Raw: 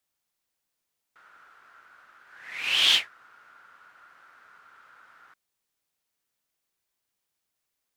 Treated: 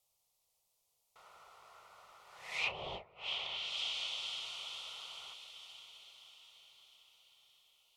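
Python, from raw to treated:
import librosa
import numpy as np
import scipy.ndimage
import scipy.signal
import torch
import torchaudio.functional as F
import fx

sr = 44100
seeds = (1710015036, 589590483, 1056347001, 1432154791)

y = fx.fixed_phaser(x, sr, hz=670.0, stages=4)
y = fx.echo_diffused(y, sr, ms=547, feedback_pct=56, wet_db=-12.0)
y = fx.env_lowpass_down(y, sr, base_hz=560.0, full_db=-29.0)
y = F.gain(torch.from_numpy(y), 5.0).numpy()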